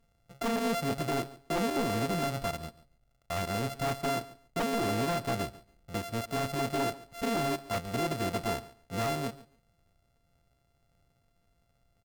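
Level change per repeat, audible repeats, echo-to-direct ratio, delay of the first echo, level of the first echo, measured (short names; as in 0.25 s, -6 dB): -15.0 dB, 2, -19.0 dB, 0.141 s, -19.0 dB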